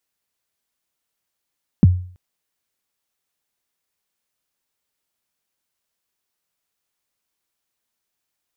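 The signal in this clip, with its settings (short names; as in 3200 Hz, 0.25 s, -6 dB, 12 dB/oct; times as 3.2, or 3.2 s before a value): kick drum length 0.33 s, from 250 Hz, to 90 Hz, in 25 ms, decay 0.47 s, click off, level -4 dB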